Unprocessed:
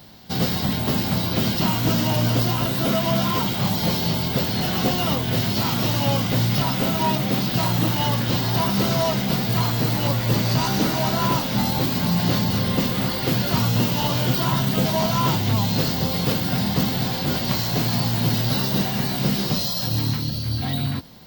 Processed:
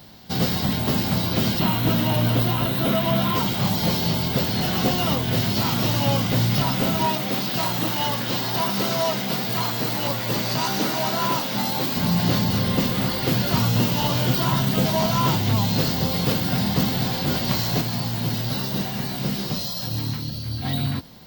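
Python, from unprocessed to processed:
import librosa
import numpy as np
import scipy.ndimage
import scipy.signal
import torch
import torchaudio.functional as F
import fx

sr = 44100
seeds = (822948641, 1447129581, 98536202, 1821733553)

y = fx.spec_box(x, sr, start_s=1.58, length_s=1.78, low_hz=4300.0, high_hz=9600.0, gain_db=-7)
y = fx.highpass(y, sr, hz=300.0, slope=6, at=(7.06, 11.97))
y = fx.edit(y, sr, fx.clip_gain(start_s=17.81, length_s=2.84, db=-4.0), tone=tone)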